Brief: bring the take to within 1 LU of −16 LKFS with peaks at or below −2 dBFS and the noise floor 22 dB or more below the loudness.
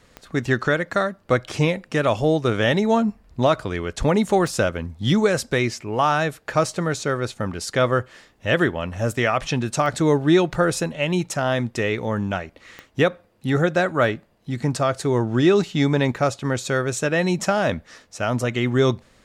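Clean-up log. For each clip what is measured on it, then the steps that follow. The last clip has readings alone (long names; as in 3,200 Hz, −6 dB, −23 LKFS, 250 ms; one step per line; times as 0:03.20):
number of clicks 4; integrated loudness −22.0 LKFS; sample peak −7.0 dBFS; target loudness −16.0 LKFS
→ click removal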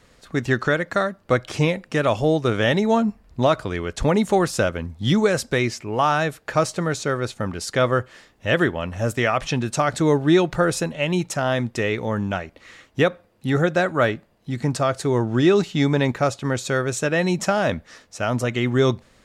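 number of clicks 0; integrated loudness −22.0 LKFS; sample peak −7.0 dBFS; target loudness −16.0 LKFS
→ level +6 dB
brickwall limiter −2 dBFS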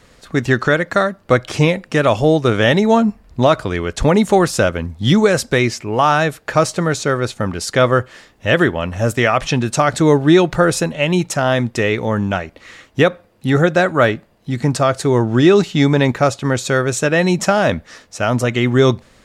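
integrated loudness −16.0 LKFS; sample peak −2.0 dBFS; background noise floor −51 dBFS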